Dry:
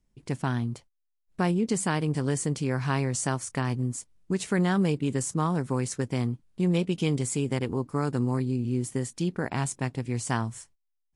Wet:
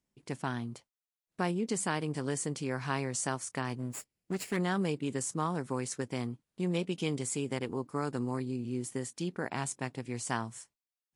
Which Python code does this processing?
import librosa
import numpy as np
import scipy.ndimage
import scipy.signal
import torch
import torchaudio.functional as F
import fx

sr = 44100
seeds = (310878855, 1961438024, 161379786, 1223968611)

y = fx.lower_of_two(x, sr, delay_ms=0.4, at=(3.78, 4.57))
y = fx.highpass(y, sr, hz=260.0, slope=6)
y = F.gain(torch.from_numpy(y), -3.5).numpy()